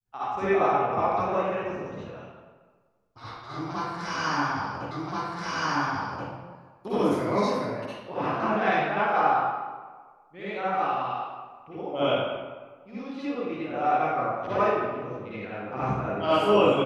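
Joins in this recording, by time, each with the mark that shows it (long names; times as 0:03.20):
0:04.91: the same again, the last 1.38 s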